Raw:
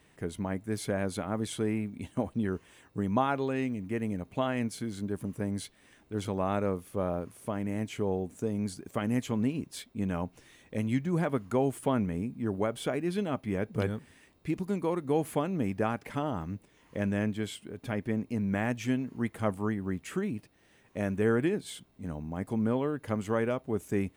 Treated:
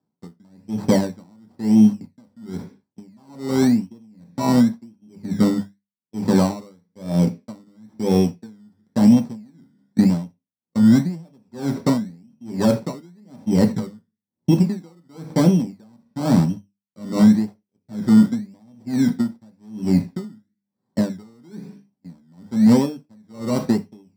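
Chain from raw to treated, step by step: one-bit delta coder 64 kbps, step -43 dBFS; high-pass 72 Hz 12 dB/octave; gate -37 dBFS, range -45 dB; bass shelf 440 Hz +8 dB; hum notches 50/100/150/200 Hz; in parallel at -1 dB: compression, threshold -32 dBFS, peak gain reduction 14.5 dB; on the sum: boxcar filter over 6 samples; decimation with a swept rate 21×, swing 60% 0.95 Hz; saturation -18 dBFS, distortion -14 dB; reverberation RT60 0.30 s, pre-delay 3 ms, DRR 4 dB; loudness maximiser +4 dB; logarithmic tremolo 1.1 Hz, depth 38 dB; trim -3.5 dB

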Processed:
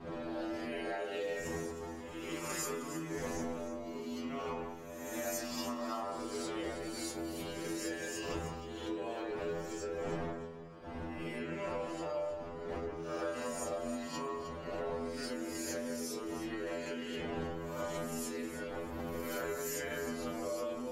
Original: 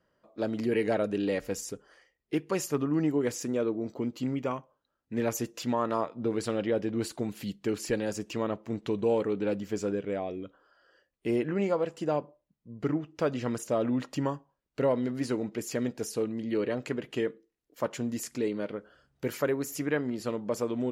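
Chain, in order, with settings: reverse spectral sustain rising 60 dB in 1.02 s; wind noise 380 Hz -27 dBFS; inharmonic resonator 81 Hz, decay 0.69 s, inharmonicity 0.002; compression 6:1, threshold -39 dBFS, peak gain reduction 18.5 dB; bass shelf 400 Hz -10 dB; echo whose repeats swap between lows and highs 156 ms, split 2.5 kHz, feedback 51%, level -5 dB; trim +7.5 dB

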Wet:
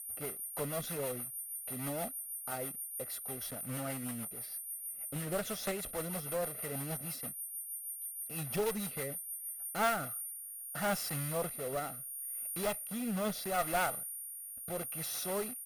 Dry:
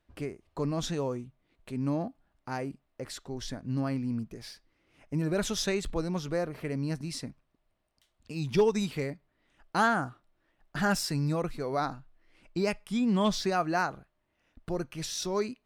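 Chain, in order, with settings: block-companded coder 3-bit; high-pass 350 Hz 6 dB/octave; treble shelf 2.8 kHz -11 dB; comb 1.5 ms, depth 54%; whistle 9.5 kHz -37 dBFS; rotary cabinet horn 6.3 Hz, later 0.75 Hz, at 9.48 s; one-sided clip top -34.5 dBFS; careless resampling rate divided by 2×, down none, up hold; 3.44–6.02 s: loudspeaker Doppler distortion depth 0.14 ms

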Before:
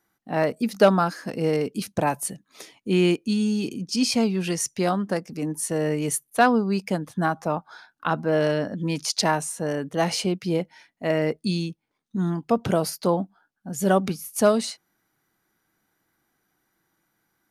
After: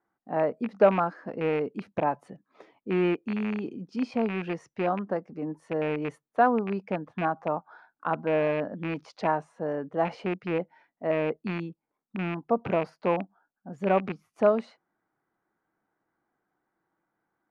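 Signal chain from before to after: rattle on loud lows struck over -25 dBFS, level -13 dBFS; low-pass 1.1 kHz 12 dB/octave; bass shelf 250 Hz -12 dB

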